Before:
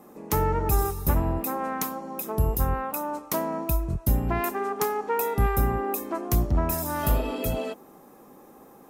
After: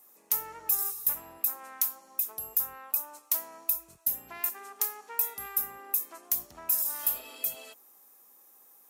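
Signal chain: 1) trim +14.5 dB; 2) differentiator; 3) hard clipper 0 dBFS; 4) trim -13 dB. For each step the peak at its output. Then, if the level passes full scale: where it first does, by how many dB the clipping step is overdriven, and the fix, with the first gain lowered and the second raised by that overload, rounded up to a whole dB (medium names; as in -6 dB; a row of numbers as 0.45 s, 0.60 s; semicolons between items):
+3.5 dBFS, +7.0 dBFS, 0.0 dBFS, -13.0 dBFS; step 1, 7.0 dB; step 1 +7.5 dB, step 4 -6 dB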